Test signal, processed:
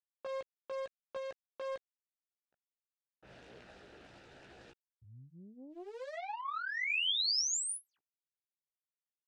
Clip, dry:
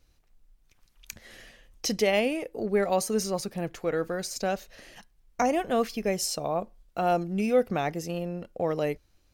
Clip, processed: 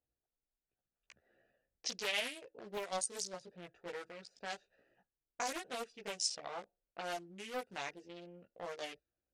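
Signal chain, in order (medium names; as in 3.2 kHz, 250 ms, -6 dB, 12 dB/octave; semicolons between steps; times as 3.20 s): local Wiener filter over 41 samples; steep low-pass 10 kHz 96 dB/octave; level-controlled noise filter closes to 1.2 kHz, open at -22.5 dBFS; chorus voices 6, 0.66 Hz, delay 16 ms, depth 1.5 ms; in parallel at +2 dB: compression, threshold -35 dBFS; on the sum: differentiator; loudspeaker Doppler distortion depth 0.44 ms; trim +5 dB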